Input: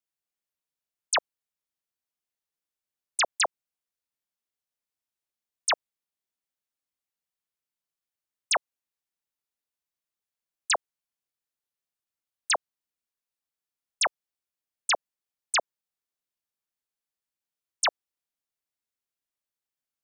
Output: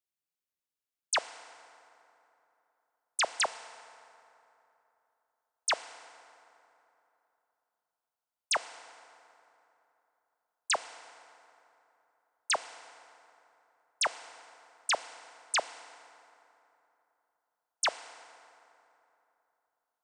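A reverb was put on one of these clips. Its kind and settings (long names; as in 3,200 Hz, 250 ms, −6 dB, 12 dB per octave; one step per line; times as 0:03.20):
feedback delay network reverb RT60 3.1 s, high-frequency decay 0.55×, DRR 12.5 dB
level −4 dB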